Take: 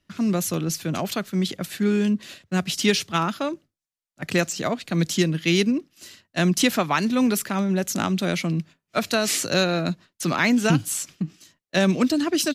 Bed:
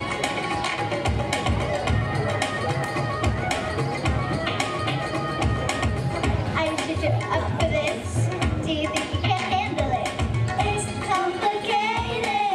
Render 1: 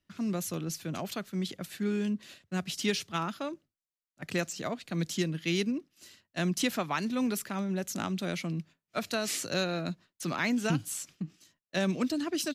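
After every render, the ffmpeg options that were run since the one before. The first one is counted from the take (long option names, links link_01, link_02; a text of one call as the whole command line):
ffmpeg -i in.wav -af "volume=-9.5dB" out.wav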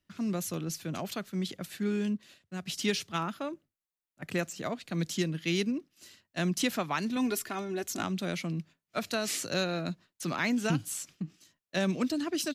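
ffmpeg -i in.wav -filter_complex "[0:a]asettb=1/sr,asplit=3[link_01][link_02][link_03];[link_01]atrim=end=3.214[link_04];[link_02]atrim=start=3.21:end=4.64,asetpts=PTS-STARTPTS,afade=type=in:duration=0.004:curve=qsin,afade=type=out:start_time=1.426:duration=0.004:curve=qsin,equalizer=frequency=5000:width=1.1:gain=-5.5[link_05];[link_03]atrim=start=4.636[link_06];[link_04][link_05]acrossfade=duration=0.004:curve1=hsin:curve2=qsin[link_07];[link_07][link_06]acrossfade=duration=0.004:curve1=qsin:curve2=hsin,asettb=1/sr,asplit=3[link_08][link_09][link_10];[link_08]atrim=end=7.164[link_11];[link_09]atrim=start=7.16:end=8.03,asetpts=PTS-STARTPTS,afade=type=in:duration=0.004:curve=qsin,afade=type=out:start_time=0.866:duration=0.004:curve=qsin,aecho=1:1:2.8:0.68,atrim=end_sample=38367[link_12];[link_10]atrim=start=8.026[link_13];[link_11][link_12]acrossfade=duration=0.004:curve1=hsin:curve2=qsin[link_14];[link_14][link_13]acrossfade=duration=0.004:curve1=qsin:curve2=hsin,asplit=3[link_15][link_16][link_17];[link_15]atrim=end=2.172[link_18];[link_16]atrim=start=2.168:end=2.662,asetpts=PTS-STARTPTS,volume=-6dB[link_19];[link_17]atrim=start=2.658[link_20];[link_18][link_19]acrossfade=duration=0.004:curve1=hsin:curve2=hsin[link_21];[link_21][link_20]acrossfade=duration=0.004:curve1=hsin:curve2=hsin" out.wav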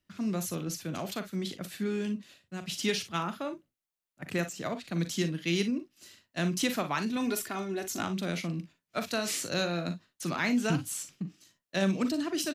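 ffmpeg -i in.wav -af "aecho=1:1:41|57:0.299|0.188" out.wav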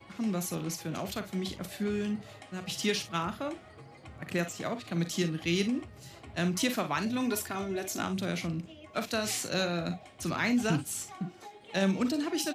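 ffmpeg -i in.wav -i bed.wav -filter_complex "[1:a]volume=-25.5dB[link_01];[0:a][link_01]amix=inputs=2:normalize=0" out.wav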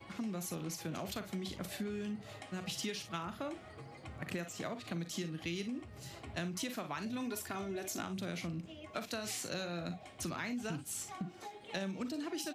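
ffmpeg -i in.wav -af "acompressor=threshold=-37dB:ratio=6" out.wav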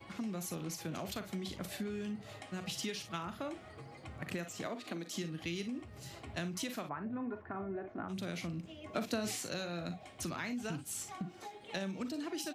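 ffmpeg -i in.wav -filter_complex "[0:a]asettb=1/sr,asplit=3[link_01][link_02][link_03];[link_01]atrim=end=4.674[link_04];[link_02]atrim=start=4.67:end=5.16,asetpts=PTS-STARTPTS,afade=type=in:duration=0.004:curve=qsin,afade=type=out:start_time=0.486:duration=0.004:curve=qsin,lowshelf=frequency=180:width_type=q:width=1.5:gain=-12.5[link_05];[link_03]atrim=start=5.156[link_06];[link_04][link_05]acrossfade=duration=0.004:curve1=hsin:curve2=qsin[link_07];[link_07][link_06]acrossfade=duration=0.004:curve1=qsin:curve2=hsin,asplit=3[link_08][link_09][link_10];[link_08]afade=type=out:start_time=6.88:duration=0.02[link_11];[link_09]lowpass=frequency=1600:width=0.5412,lowpass=frequency=1600:width=1.3066,afade=type=in:start_time=6.88:duration=0.02,afade=type=out:start_time=8.08:duration=0.02[link_12];[link_10]afade=type=in:start_time=8.08:duration=0.02[link_13];[link_11][link_12][link_13]amix=inputs=3:normalize=0,asettb=1/sr,asplit=3[link_14][link_15][link_16];[link_14]atrim=end=8.854[link_17];[link_15]atrim=start=8.85:end=9.36,asetpts=PTS-STARTPTS,afade=type=in:duration=0.004:curve=qsin,afade=type=out:start_time=0.506:duration=0.004:curve=qsin,equalizer=frequency=250:width_type=o:width=2.6:gain=8[link_18];[link_16]atrim=start=9.356[link_19];[link_17][link_18]acrossfade=duration=0.004:curve1=hsin:curve2=qsin[link_20];[link_20][link_19]acrossfade=duration=0.004:curve1=qsin:curve2=hsin" out.wav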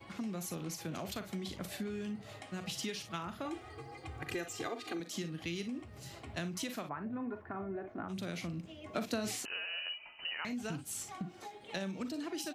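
ffmpeg -i in.wav -filter_complex "[0:a]asettb=1/sr,asplit=3[link_01][link_02][link_03];[link_01]atrim=end=3.454[link_04];[link_02]atrim=start=3.45:end=5,asetpts=PTS-STARTPTS,afade=type=in:duration=0.004:curve=qsin,afade=type=out:start_time=1.546:duration=0.004:curve=qsin,aecho=1:1:2.5:0.91,atrim=end_sample=68355[link_05];[link_03]atrim=start=4.996[link_06];[link_04][link_05]acrossfade=duration=0.004:curve1=hsin:curve2=qsin[link_07];[link_07][link_06]acrossfade=duration=0.004:curve1=qsin:curve2=hsin,asettb=1/sr,asplit=3[link_08][link_09][link_10];[link_08]atrim=end=9.454[link_11];[link_09]atrim=start=9.45:end=10.45,asetpts=PTS-STARTPTS,afade=type=in:duration=0.004:curve=qsin,afade=type=out:start_time=0.996:duration=0.004:curve=qsin,lowpass=frequency=2600:width_type=q:width=0.5098,lowpass=frequency=2600:width_type=q:width=0.6013,lowpass=frequency=2600:width_type=q:width=0.9,lowpass=frequency=2600:width_type=q:width=2.563,afreqshift=-3100[link_12];[link_10]atrim=start=10.446[link_13];[link_11][link_12]acrossfade=duration=0.004:curve1=hsin:curve2=qsin[link_14];[link_14][link_13]acrossfade=duration=0.004:curve1=qsin:curve2=hsin" out.wav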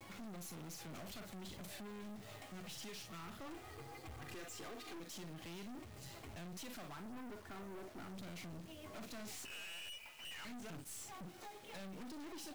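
ffmpeg -i in.wav -af "aeval=exprs='(tanh(251*val(0)+0.6)-tanh(0.6))/251':channel_layout=same,acrusher=bits=9:mix=0:aa=0.000001" out.wav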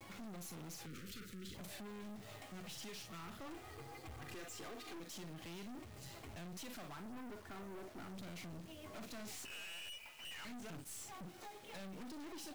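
ffmpeg -i in.wav -filter_complex "[0:a]asettb=1/sr,asplit=3[link_01][link_02][link_03];[link_01]atrim=end=0.864[link_04];[link_02]atrim=start=0.86:end=1.55,asetpts=PTS-STARTPTS,afade=type=in:duration=0.004:curve=qsin,afade=type=out:start_time=0.686:duration=0.004:curve=qsin,asuperstop=centerf=790:order=12:qfactor=1.1[link_05];[link_03]atrim=start=1.546[link_06];[link_04][link_05]acrossfade=duration=0.004:curve1=hsin:curve2=qsin[link_07];[link_07][link_06]acrossfade=duration=0.004:curve1=qsin:curve2=hsin" out.wav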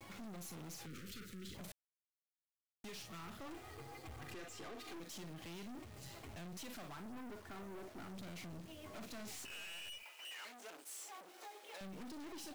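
ffmpeg -i in.wav -filter_complex "[0:a]asettb=1/sr,asplit=3[link_01][link_02][link_03];[link_01]atrim=end=4.334[link_04];[link_02]atrim=start=4.33:end=4.79,asetpts=PTS-STARTPTS,afade=type=in:duration=0.004:curve=qsin,afade=type=out:start_time=0.456:duration=0.004:curve=qsin,highshelf=frequency=8000:gain=-8[link_05];[link_03]atrim=start=4.786[link_06];[link_04][link_05]acrossfade=duration=0.004:curve1=hsin:curve2=qsin[link_07];[link_07][link_06]acrossfade=duration=0.004:curve1=qsin:curve2=hsin,asettb=1/sr,asplit=3[link_08][link_09][link_10];[link_08]atrim=end=10.034[link_11];[link_09]atrim=start=10.03:end=11.81,asetpts=PTS-STARTPTS,afade=type=in:duration=0.004:curve=qsin,afade=type=out:start_time=1.776:duration=0.004:curve=qsin,highpass=frequency=370:width=0.5412,highpass=frequency=370:width=1.3066[link_12];[link_10]atrim=start=11.806[link_13];[link_11][link_12]acrossfade=duration=0.004:curve1=hsin:curve2=qsin[link_14];[link_14][link_13]acrossfade=duration=0.004:curve1=qsin:curve2=hsin,asplit=3[link_15][link_16][link_17];[link_15]atrim=end=1.72,asetpts=PTS-STARTPTS,afade=type=out:start_time=1.716:duration=0.004:curve=hsin[link_18];[link_16]atrim=start=1.72:end=2.84,asetpts=PTS-STARTPTS,volume=0[link_19];[link_17]atrim=start=2.84,asetpts=PTS-STARTPTS,afade=type=in:duration=0.004:curve=hsin[link_20];[link_18][link_19][link_20]concat=n=3:v=0:a=1" out.wav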